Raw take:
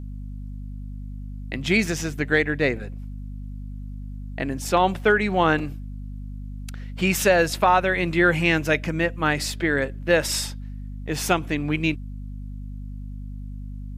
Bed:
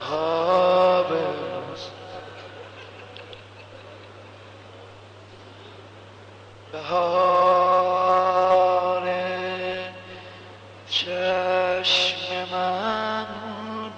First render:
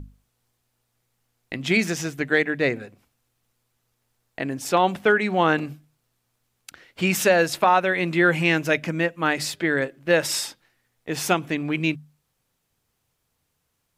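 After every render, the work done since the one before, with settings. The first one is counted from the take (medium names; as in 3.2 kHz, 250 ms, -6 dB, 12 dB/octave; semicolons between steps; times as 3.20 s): hum notches 50/100/150/200/250 Hz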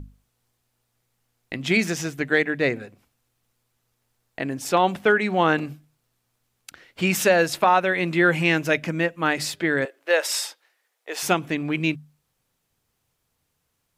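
9.85–11.23 s: high-pass 440 Hz 24 dB/octave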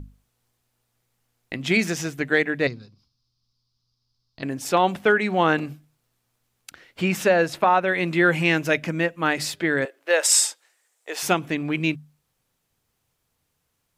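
2.67–4.43 s: FFT filter 140 Hz 0 dB, 500 Hz -16 dB, 750 Hz -17 dB, 1.1 kHz -7 dB, 1.8 kHz -20 dB, 2.7 kHz -12 dB, 5 kHz +11 dB, 7.5 kHz -18 dB; 7.02–7.88 s: treble shelf 3.5 kHz -9 dB; 10.23–11.11 s: peaking EQ 7.8 kHz +13.5 dB 0.74 oct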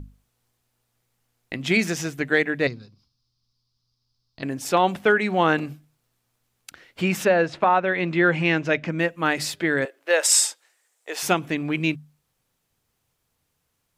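7.25–8.99 s: distance through air 120 m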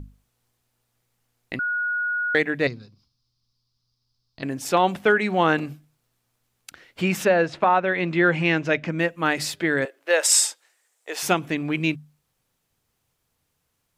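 1.59–2.35 s: bleep 1.45 kHz -22 dBFS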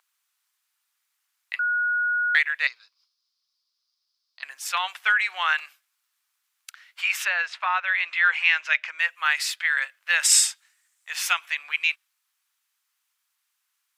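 inverse Chebyshev high-pass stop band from 190 Hz, stop band 80 dB; dynamic bell 2.5 kHz, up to +5 dB, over -39 dBFS, Q 1.1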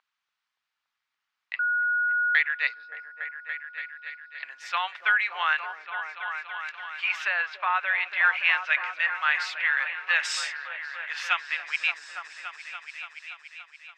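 distance through air 200 m; on a send: delay with an opening low-pass 286 ms, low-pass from 400 Hz, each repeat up 1 oct, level -3 dB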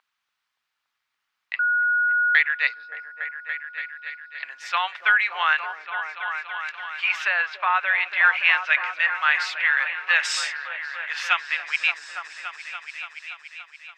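trim +4 dB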